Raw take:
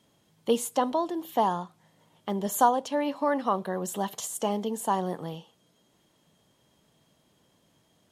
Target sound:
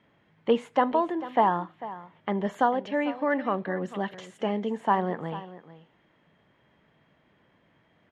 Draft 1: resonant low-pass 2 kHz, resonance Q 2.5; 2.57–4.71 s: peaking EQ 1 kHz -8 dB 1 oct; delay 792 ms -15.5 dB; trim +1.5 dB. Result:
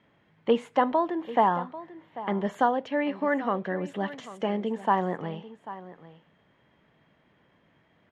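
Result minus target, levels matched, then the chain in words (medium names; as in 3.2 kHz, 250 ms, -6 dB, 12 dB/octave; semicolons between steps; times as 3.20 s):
echo 346 ms late
resonant low-pass 2 kHz, resonance Q 2.5; 2.57–4.71 s: peaking EQ 1 kHz -8 dB 1 oct; delay 446 ms -15.5 dB; trim +1.5 dB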